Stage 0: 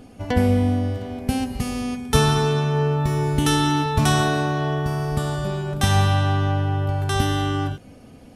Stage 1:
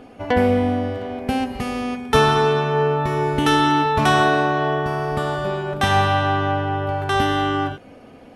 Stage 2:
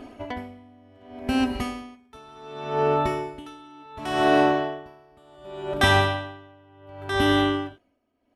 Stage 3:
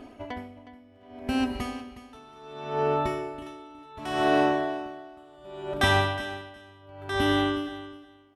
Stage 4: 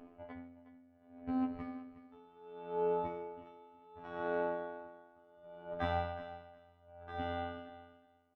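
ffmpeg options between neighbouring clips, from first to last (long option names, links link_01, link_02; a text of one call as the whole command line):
ffmpeg -i in.wav -af "bass=frequency=250:gain=-12,treble=frequency=4000:gain=-14,volume=6.5dB" out.wav
ffmpeg -i in.wav -af "aecho=1:1:3.1:0.6,aeval=exprs='val(0)*pow(10,-32*(0.5-0.5*cos(2*PI*0.68*n/s))/20)':channel_layout=same" out.wav
ffmpeg -i in.wav -af "aecho=1:1:364|728:0.178|0.0285,volume=-3.5dB" out.wav
ffmpeg -i in.wav -af "afftfilt=real='hypot(re,im)*cos(PI*b)':imag='0':win_size=2048:overlap=0.75,lowpass=1600,aecho=1:1:6.8:0.49,volume=-8dB" out.wav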